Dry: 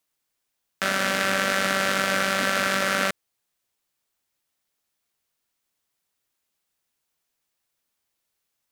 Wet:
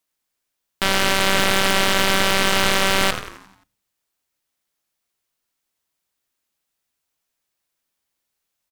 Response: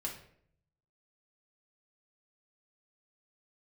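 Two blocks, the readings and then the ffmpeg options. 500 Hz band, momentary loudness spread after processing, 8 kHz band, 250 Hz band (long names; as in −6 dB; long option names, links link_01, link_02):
+4.5 dB, 4 LU, +6.5 dB, +5.0 dB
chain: -filter_complex "[0:a]asplit=7[link_01][link_02][link_03][link_04][link_05][link_06][link_07];[link_02]adelay=88,afreqshift=-78,volume=-8dB[link_08];[link_03]adelay=176,afreqshift=-156,volume=-13.4dB[link_09];[link_04]adelay=264,afreqshift=-234,volume=-18.7dB[link_10];[link_05]adelay=352,afreqshift=-312,volume=-24.1dB[link_11];[link_06]adelay=440,afreqshift=-390,volume=-29.4dB[link_12];[link_07]adelay=528,afreqshift=-468,volume=-34.8dB[link_13];[link_01][link_08][link_09][link_10][link_11][link_12][link_13]amix=inputs=7:normalize=0,aeval=exprs='0.596*(cos(1*acos(clip(val(0)/0.596,-1,1)))-cos(1*PI/2))+0.266*(cos(6*acos(clip(val(0)/0.596,-1,1)))-cos(6*PI/2))':channel_layout=same,asplit=2[link_14][link_15];[1:a]atrim=start_sample=2205,asetrate=61740,aresample=44100[link_16];[link_15][link_16]afir=irnorm=-1:irlink=0,volume=-14dB[link_17];[link_14][link_17]amix=inputs=2:normalize=0,volume=-1.5dB"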